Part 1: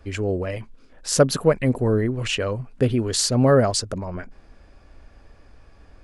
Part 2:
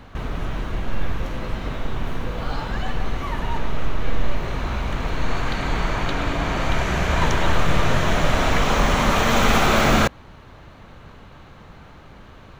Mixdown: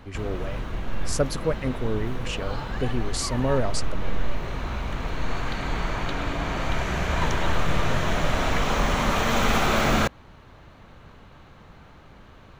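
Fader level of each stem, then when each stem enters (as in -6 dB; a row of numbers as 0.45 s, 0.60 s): -8.0 dB, -4.5 dB; 0.00 s, 0.00 s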